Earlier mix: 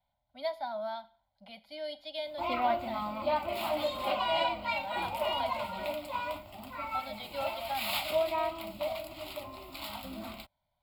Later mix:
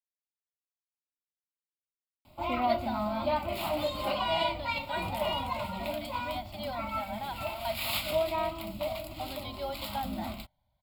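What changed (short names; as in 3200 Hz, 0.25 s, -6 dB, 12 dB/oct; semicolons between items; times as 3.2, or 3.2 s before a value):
speech: entry +2.25 s; master: add tone controls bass +10 dB, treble +3 dB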